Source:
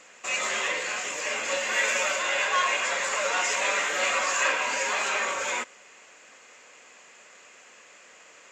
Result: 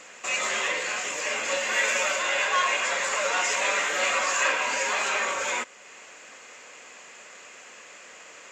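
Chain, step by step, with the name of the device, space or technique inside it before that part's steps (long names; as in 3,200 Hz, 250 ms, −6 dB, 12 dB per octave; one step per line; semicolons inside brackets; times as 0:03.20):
parallel compression (in parallel at −1.5 dB: downward compressor, threshold −45 dBFS, peak gain reduction 22.5 dB)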